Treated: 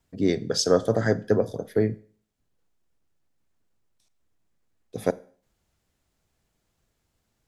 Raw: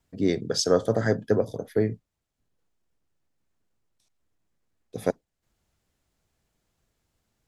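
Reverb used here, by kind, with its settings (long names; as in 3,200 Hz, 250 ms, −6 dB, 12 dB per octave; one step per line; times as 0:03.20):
four-comb reverb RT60 0.48 s, combs from 33 ms, DRR 19 dB
level +1 dB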